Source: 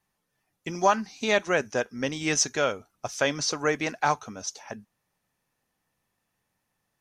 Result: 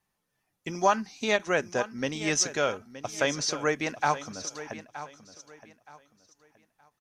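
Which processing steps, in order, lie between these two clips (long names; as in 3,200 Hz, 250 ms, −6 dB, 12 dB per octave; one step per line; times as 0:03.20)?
repeating echo 921 ms, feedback 27%, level −14 dB
every ending faded ahead of time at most 480 dB per second
level −1.5 dB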